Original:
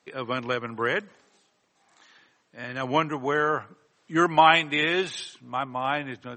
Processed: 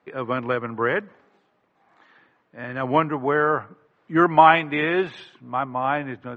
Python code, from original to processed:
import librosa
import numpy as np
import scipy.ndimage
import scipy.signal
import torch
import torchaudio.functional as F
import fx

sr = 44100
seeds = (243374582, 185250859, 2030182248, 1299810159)

y = scipy.signal.sosfilt(scipy.signal.butter(2, 1800.0, 'lowpass', fs=sr, output='sos'), x)
y = y * 10.0 ** (4.5 / 20.0)